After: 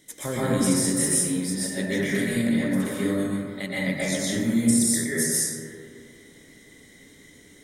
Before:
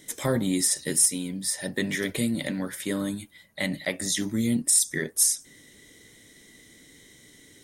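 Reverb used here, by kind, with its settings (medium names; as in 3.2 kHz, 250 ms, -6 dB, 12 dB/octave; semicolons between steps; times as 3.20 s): plate-style reverb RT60 2.3 s, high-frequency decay 0.25×, pre-delay 110 ms, DRR -8.5 dB; trim -6 dB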